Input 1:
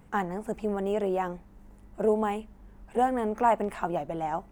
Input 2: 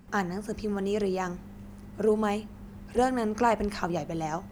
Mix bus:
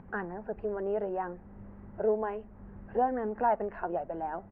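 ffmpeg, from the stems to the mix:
-filter_complex "[0:a]highshelf=f=4400:g=9,acontrast=70,flanger=delay=0.2:depth=1.8:regen=-51:speed=0.66:shape=triangular,volume=0.422,asplit=2[s0][s1];[1:a]volume=-1,adelay=1.1,volume=0.75[s2];[s1]apad=whole_len=199067[s3];[s2][s3]sidechaincompress=threshold=0.0112:ratio=8:attack=16:release=441[s4];[s0][s4]amix=inputs=2:normalize=0,lowpass=f=1800:w=0.5412,lowpass=f=1800:w=1.3066,acompressor=mode=upward:threshold=0.00398:ratio=2.5"

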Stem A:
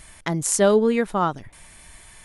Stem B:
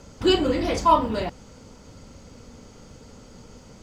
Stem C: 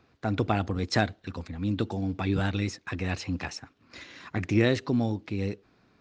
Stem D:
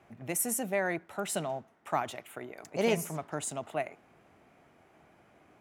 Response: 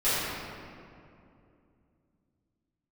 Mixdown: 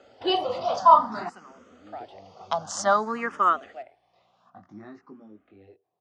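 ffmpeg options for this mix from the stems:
-filter_complex "[0:a]highpass=f=550:p=1,agate=range=0.0708:threshold=0.00708:ratio=16:detection=peak,adelay=2250,volume=1.26[s0];[1:a]volume=0.891[s1];[2:a]tiltshelf=f=940:g=7,flanger=delay=18.5:depth=6.8:speed=0.41,adelay=200,volume=0.224[s2];[3:a]aeval=exprs='val(0)+0.00355*(sin(2*PI*60*n/s)+sin(2*PI*2*60*n/s)/2+sin(2*PI*3*60*n/s)/3+sin(2*PI*4*60*n/s)/4+sin(2*PI*5*60*n/s)/5)':c=same,volume=0.335[s3];[s0][s1][s2][s3]amix=inputs=4:normalize=0,highpass=290,equalizer=f=300:t=q:w=4:g=-6,equalizer=f=460:t=q:w=4:g=-4,equalizer=f=730:t=q:w=4:g=9,equalizer=f=1200:t=q:w=4:g=9,equalizer=f=2300:t=q:w=4:g=-6,equalizer=f=4100:t=q:w=4:g=-4,lowpass=f=5500:w=0.5412,lowpass=f=5500:w=1.3066,asplit=2[s4][s5];[s5]afreqshift=0.54[s6];[s4][s6]amix=inputs=2:normalize=1"

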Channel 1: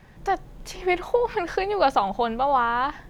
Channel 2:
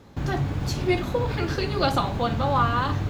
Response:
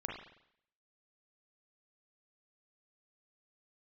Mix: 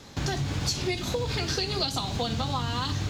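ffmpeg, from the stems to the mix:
-filter_complex "[0:a]volume=0.376[s0];[1:a]highpass=41,equalizer=f=5700:w=0.45:g=14.5,acrossover=split=330|3000[s1][s2][s3];[s2]acompressor=threshold=0.0282:ratio=6[s4];[s1][s4][s3]amix=inputs=3:normalize=0,volume=1[s5];[s0][s5]amix=inputs=2:normalize=0,acompressor=threshold=0.0562:ratio=6"

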